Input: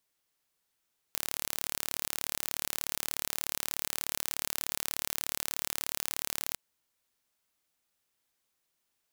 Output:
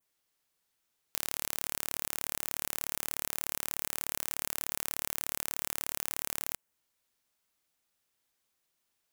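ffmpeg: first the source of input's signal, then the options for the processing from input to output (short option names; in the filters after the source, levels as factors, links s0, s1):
-f lavfi -i "aevalsrc='0.531*eq(mod(n,1202),0)':d=5.41:s=44100"
-af "adynamicequalizer=threshold=0.00126:dfrequency=4200:dqfactor=1.3:tfrequency=4200:tqfactor=1.3:attack=5:release=100:ratio=0.375:range=3:mode=cutabove:tftype=bell"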